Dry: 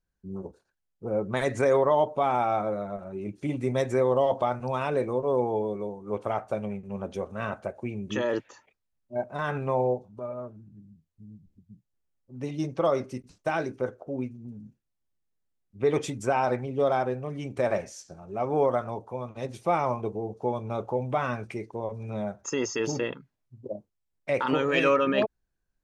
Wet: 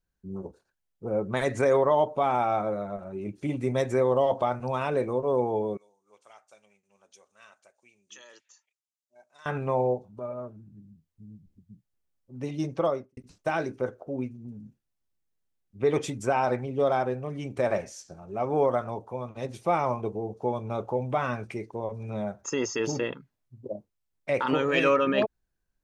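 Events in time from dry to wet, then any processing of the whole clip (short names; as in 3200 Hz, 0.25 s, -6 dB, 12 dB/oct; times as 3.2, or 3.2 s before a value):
5.77–9.46 band-pass 6800 Hz, Q 1.8
12.77–13.17 studio fade out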